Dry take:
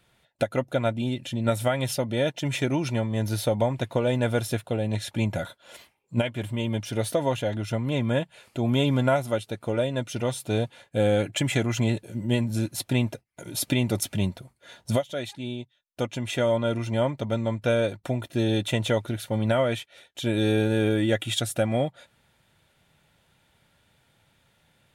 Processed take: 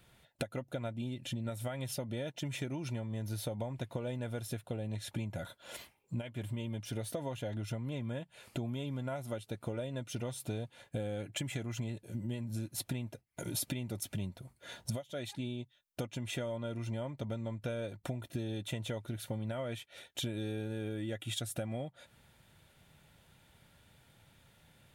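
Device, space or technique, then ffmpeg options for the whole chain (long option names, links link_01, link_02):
ASMR close-microphone chain: -af "lowshelf=frequency=220:gain=5,acompressor=threshold=-34dB:ratio=10,highshelf=frequency=11000:gain=6.5,volume=-1dB"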